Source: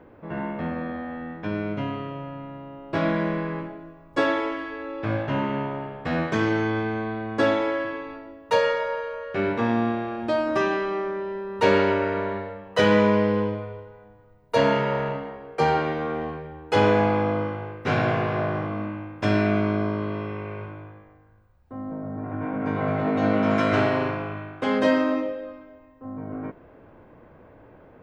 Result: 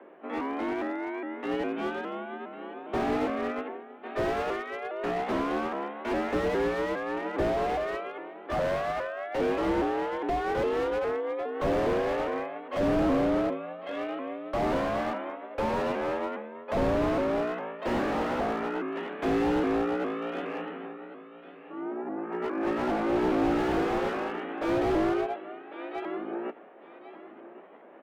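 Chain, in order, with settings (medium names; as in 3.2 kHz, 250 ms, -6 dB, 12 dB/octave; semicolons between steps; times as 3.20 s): sawtooth pitch modulation +4 st, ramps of 409 ms; mistuned SSB +56 Hz 180–3400 Hz; on a send: feedback delay 1100 ms, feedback 23%, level -15 dB; on the sum: slew-rate limiter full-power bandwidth 34 Hz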